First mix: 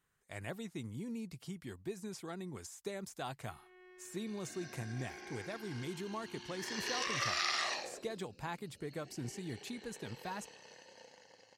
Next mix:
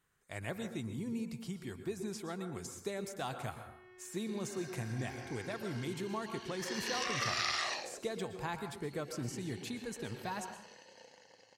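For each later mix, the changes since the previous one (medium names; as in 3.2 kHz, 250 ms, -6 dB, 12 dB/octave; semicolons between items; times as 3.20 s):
speech: send on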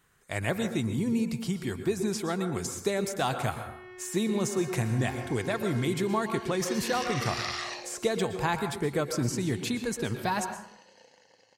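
speech +11.0 dB; first sound +11.5 dB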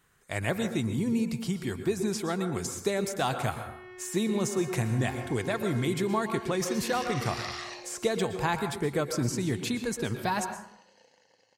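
second sound -4.0 dB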